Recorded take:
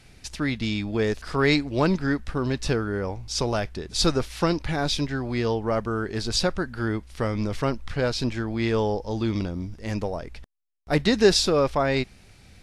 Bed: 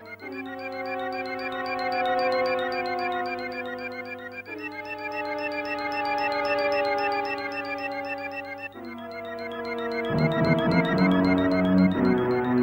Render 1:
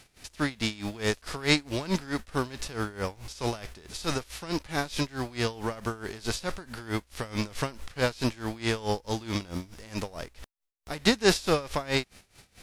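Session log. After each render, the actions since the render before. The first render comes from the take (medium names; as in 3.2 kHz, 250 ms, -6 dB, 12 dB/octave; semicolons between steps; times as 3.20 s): formants flattened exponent 0.6; logarithmic tremolo 4.6 Hz, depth 20 dB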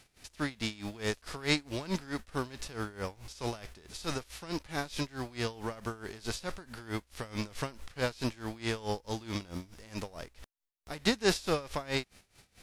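trim -5.5 dB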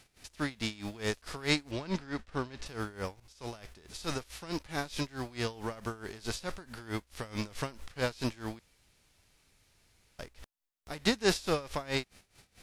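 1.71–2.66 s: distance through air 77 m; 3.20–4.20 s: fade in equal-power, from -16 dB; 8.59–10.19 s: room tone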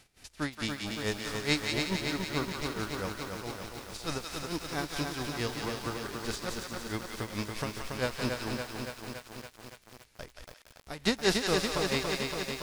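on a send: thinning echo 176 ms, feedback 49%, high-pass 1.1 kHz, level -3.5 dB; on the sum: bit-crushed delay 282 ms, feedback 80%, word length 8-bit, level -4 dB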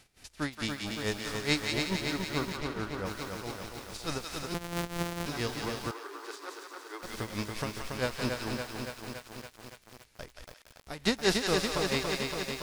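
2.56–3.05 s: treble shelf 6.5 kHz -> 3.5 kHz -11.5 dB; 4.54–5.26 s: sorted samples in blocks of 256 samples; 5.91–7.03 s: rippled Chebyshev high-pass 280 Hz, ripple 9 dB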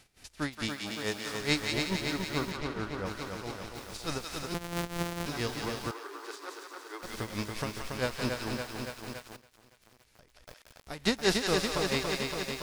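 0.69–1.40 s: high-pass 180 Hz 6 dB/octave; 2.51–3.76 s: treble shelf 10 kHz -8.5 dB; 9.36–10.48 s: compression 12:1, threshold -54 dBFS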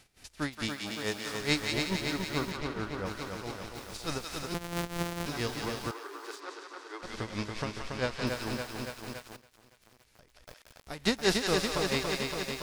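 6.40–8.27 s: low-pass 6.4 kHz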